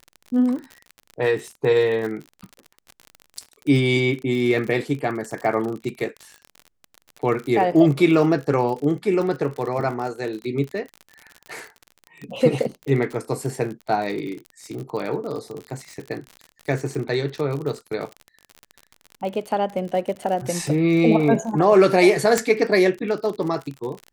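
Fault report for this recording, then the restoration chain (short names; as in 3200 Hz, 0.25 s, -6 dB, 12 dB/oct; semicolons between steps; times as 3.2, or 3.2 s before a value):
crackle 50/s -29 dBFS
22.38 pop -5 dBFS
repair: de-click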